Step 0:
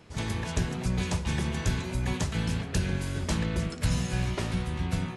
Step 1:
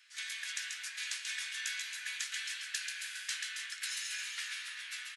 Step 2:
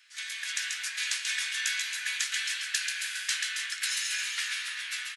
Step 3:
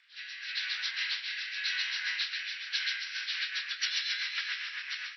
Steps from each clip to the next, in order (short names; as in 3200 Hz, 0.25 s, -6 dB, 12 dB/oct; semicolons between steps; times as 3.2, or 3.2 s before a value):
Chebyshev high-pass 1600 Hz, order 4; doubler 14 ms -13 dB; split-band echo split 2200 Hz, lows 0.301 s, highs 0.136 s, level -5 dB; gain -1 dB
AGC gain up to 5 dB; gain +3 dB
nonlinear frequency compression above 1500 Hz 1.5:1; bell 4100 Hz +3.5 dB 0.33 oct; rotary speaker horn 0.9 Hz, later 7.5 Hz, at 2.69; gain +1 dB